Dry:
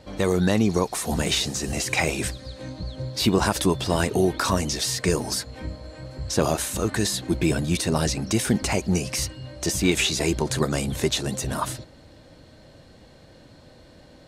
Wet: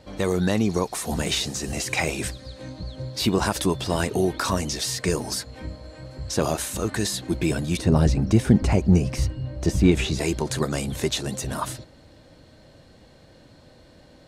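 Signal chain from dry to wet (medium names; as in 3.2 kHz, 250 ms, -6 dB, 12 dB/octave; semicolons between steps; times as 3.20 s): 7.79–10.19 s: tilt EQ -3 dB/octave; trim -1.5 dB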